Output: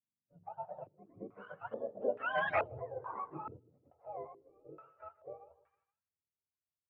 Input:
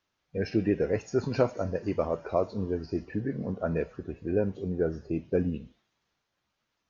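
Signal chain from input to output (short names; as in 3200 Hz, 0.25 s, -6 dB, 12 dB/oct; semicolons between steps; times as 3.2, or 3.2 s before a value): spectrum mirrored in octaves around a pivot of 490 Hz; Doppler pass-by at 2.54, 45 m/s, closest 2.8 m; dynamic EQ 410 Hz, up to -3 dB, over -59 dBFS, Q 1.1; in parallel at -4.5 dB: soft clip -36 dBFS, distortion -13 dB; on the sum: notches 60/120/180/240/300/360/420/480 Hz; sample leveller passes 1; feedback echo 0.156 s, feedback 36%, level -18 dB; stepped low-pass 2.3 Hz 260–1800 Hz; gain +1 dB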